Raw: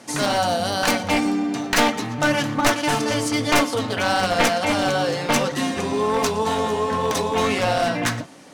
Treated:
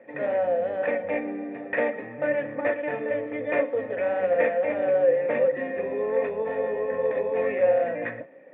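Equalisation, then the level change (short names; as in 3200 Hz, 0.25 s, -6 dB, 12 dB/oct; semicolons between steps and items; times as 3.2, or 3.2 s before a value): vocal tract filter e; HPF 210 Hz 6 dB/oct; air absorption 320 m; +8.0 dB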